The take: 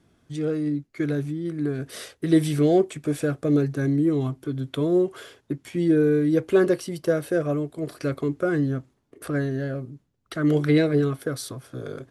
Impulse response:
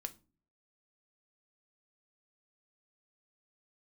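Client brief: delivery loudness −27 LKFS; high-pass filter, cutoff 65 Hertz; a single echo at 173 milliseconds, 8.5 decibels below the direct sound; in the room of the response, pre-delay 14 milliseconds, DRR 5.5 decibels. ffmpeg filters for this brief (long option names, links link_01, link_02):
-filter_complex "[0:a]highpass=65,aecho=1:1:173:0.376,asplit=2[link_01][link_02];[1:a]atrim=start_sample=2205,adelay=14[link_03];[link_02][link_03]afir=irnorm=-1:irlink=0,volume=-3dB[link_04];[link_01][link_04]amix=inputs=2:normalize=0,volume=-5dB"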